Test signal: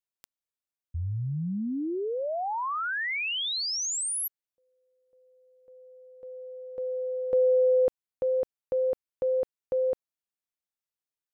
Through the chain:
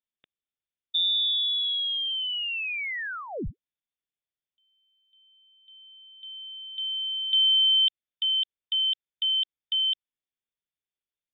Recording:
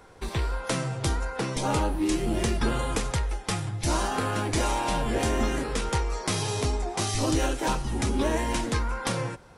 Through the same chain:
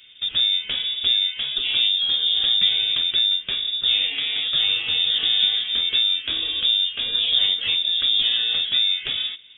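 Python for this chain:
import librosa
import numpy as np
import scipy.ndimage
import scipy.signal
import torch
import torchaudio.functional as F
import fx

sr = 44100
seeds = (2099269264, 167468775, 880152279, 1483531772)

y = fx.low_shelf(x, sr, hz=270.0, db=6.5)
y = fx.freq_invert(y, sr, carrier_hz=3600)
y = fx.peak_eq(y, sr, hz=960.0, db=-10.5, octaves=0.91)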